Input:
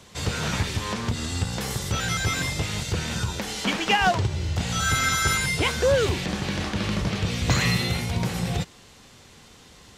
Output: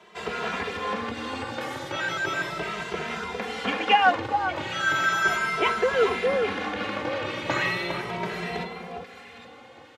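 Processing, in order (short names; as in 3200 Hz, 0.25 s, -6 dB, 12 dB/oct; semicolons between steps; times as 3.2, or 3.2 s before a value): three-band isolator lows -24 dB, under 270 Hz, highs -19 dB, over 3000 Hz; on a send: echo with dull and thin repeats by turns 0.406 s, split 1400 Hz, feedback 50%, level -5 dB; on the sum: endless flanger 2.6 ms +0.36 Hz; gain +5 dB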